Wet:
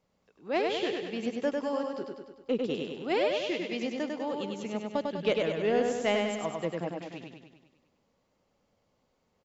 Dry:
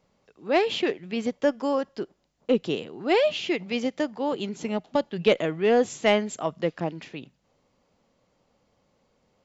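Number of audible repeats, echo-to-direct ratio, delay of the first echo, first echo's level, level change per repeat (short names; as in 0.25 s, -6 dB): 7, -1.5 dB, 99 ms, -3.5 dB, -4.5 dB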